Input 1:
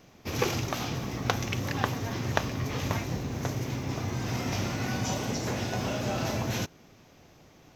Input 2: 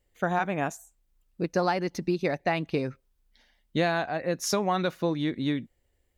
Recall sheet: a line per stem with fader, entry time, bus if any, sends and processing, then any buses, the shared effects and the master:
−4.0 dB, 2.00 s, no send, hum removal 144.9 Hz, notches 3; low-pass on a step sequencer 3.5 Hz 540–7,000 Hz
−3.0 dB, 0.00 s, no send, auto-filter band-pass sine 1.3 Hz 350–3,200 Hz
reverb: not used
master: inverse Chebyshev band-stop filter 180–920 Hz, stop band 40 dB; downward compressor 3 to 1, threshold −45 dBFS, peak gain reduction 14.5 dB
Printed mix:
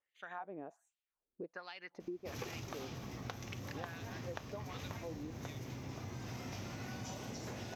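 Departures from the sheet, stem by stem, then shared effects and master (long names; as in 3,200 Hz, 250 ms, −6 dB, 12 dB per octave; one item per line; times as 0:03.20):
stem 1: missing low-pass on a step sequencer 3.5 Hz 540–7,000 Hz
master: missing inverse Chebyshev band-stop filter 180–920 Hz, stop band 40 dB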